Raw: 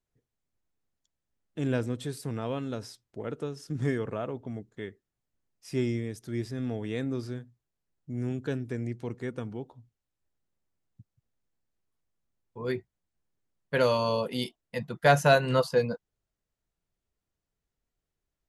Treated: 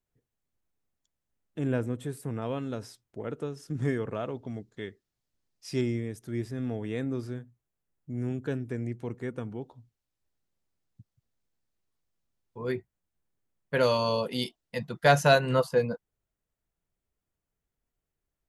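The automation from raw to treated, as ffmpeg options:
-af "asetnsamples=n=441:p=0,asendcmd='1.59 equalizer g -12.5;2.42 equalizer g -4;4.15 equalizer g 6;5.81 equalizer g -6;9.62 equalizer g 2.5;12.63 equalizer g -4;13.83 equalizer g 3;15.39 equalizer g -6',equalizer=f=4600:t=o:w=1.1:g=-3"

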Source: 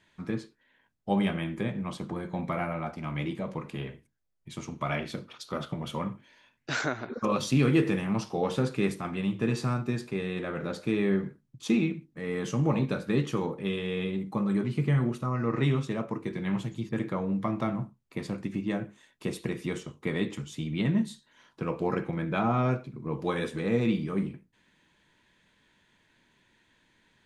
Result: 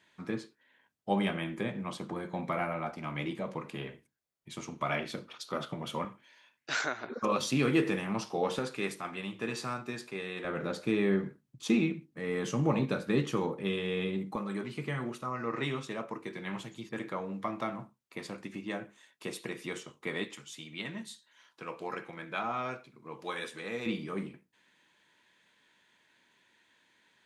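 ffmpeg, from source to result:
-af "asetnsamples=n=441:p=0,asendcmd='6.05 highpass f 790;7.04 highpass f 340;8.59 highpass f 720;10.45 highpass f 180;14.36 highpass f 630;20.24 highpass f 1400;23.86 highpass f 500',highpass=f=270:p=1"

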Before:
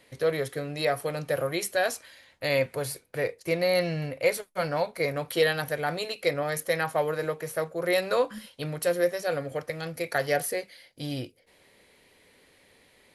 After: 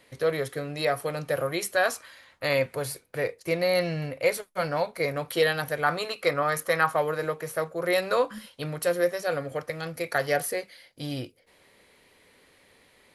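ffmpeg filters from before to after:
-af "asetnsamples=n=441:p=0,asendcmd='1.74 equalizer g 9.5;2.53 equalizer g 2.5;5.82 equalizer g 12.5;6.96 equalizer g 4',equalizer=f=1200:t=o:w=0.7:g=3"

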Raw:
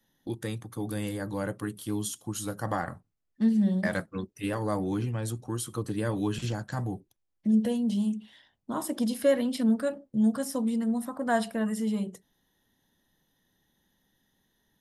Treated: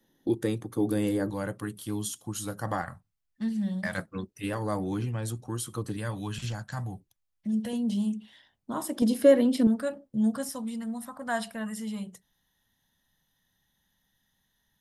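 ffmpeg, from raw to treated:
-af "asetnsamples=n=441:p=0,asendcmd='1.3 equalizer g -2;2.82 equalizer g -13;3.98 equalizer g -2;5.97 equalizer g -11;7.73 equalizer g -1.5;9.02 equalizer g 8.5;9.67 equalizer g -3;10.49 equalizer g -12.5',equalizer=f=360:t=o:w=1.4:g=9.5"

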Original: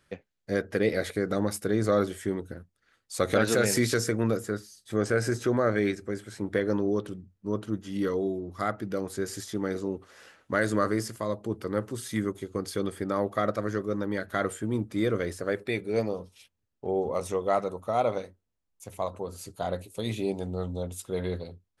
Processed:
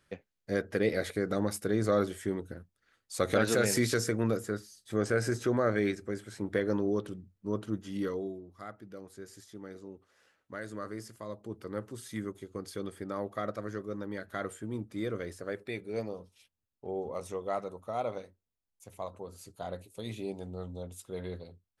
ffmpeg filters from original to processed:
-af "volume=1.58,afade=t=out:st=7.86:d=0.66:silence=0.251189,afade=t=in:st=10.74:d=1.02:silence=0.446684"

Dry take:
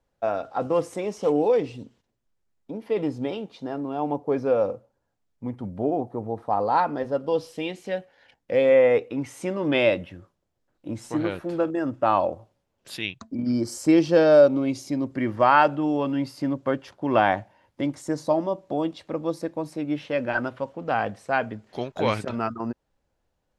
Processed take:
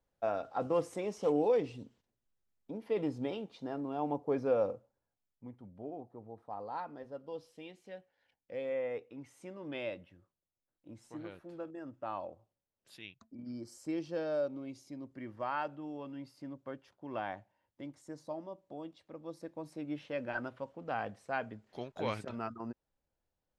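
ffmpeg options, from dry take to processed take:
-af "volume=0.891,afade=t=out:st=4.62:d=0.97:silence=0.281838,afade=t=in:st=19.19:d=0.6:silence=0.446684"

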